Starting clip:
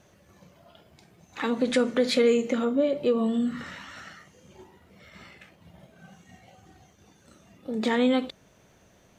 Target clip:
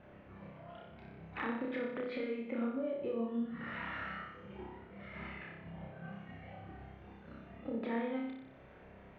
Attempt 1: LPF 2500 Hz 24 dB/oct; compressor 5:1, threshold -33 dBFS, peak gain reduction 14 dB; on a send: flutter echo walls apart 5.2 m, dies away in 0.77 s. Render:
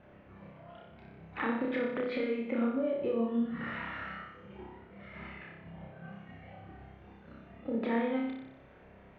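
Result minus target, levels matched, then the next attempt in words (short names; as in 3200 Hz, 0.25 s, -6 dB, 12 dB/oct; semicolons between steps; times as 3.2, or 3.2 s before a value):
compressor: peak gain reduction -5.5 dB
LPF 2500 Hz 24 dB/oct; compressor 5:1, threshold -40 dBFS, peak gain reduction 20 dB; on a send: flutter echo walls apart 5.2 m, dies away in 0.77 s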